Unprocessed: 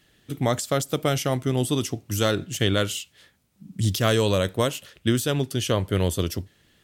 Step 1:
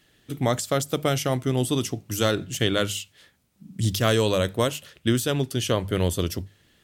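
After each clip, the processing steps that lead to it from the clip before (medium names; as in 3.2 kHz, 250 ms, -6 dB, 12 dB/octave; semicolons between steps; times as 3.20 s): hum notches 50/100/150/200 Hz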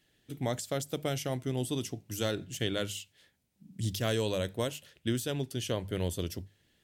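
peaking EQ 1.2 kHz -7 dB 0.41 oct; trim -9 dB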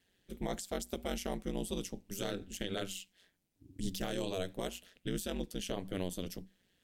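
ring modulator 92 Hz; peak limiter -23 dBFS, peak gain reduction 6 dB; trim -1 dB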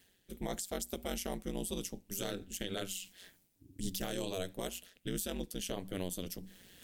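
treble shelf 7.4 kHz +10 dB; reverse; upward compressor, threshold -42 dBFS; reverse; trim -1.5 dB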